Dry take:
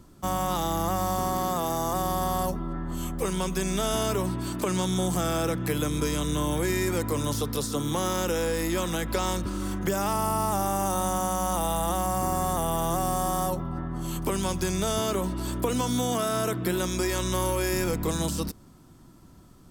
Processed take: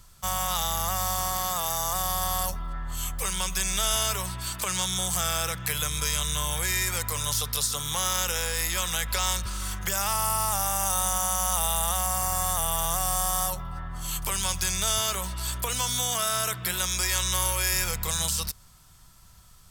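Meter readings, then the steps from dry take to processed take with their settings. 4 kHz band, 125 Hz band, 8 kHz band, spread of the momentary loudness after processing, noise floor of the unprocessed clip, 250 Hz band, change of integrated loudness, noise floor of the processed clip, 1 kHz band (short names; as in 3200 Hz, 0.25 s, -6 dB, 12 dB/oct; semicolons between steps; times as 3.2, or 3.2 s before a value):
+6.5 dB, -4.0 dB, +8.0 dB, 6 LU, -52 dBFS, -13.0 dB, +1.5 dB, -53 dBFS, -1.5 dB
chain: passive tone stack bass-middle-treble 10-0-10; gain +8.5 dB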